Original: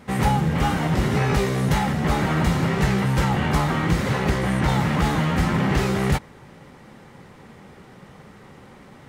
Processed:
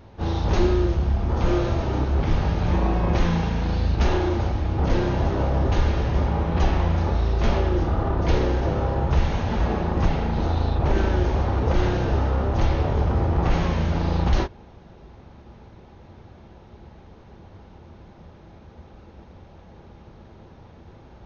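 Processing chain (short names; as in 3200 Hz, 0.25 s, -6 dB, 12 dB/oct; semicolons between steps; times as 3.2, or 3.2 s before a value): speed mistake 78 rpm record played at 33 rpm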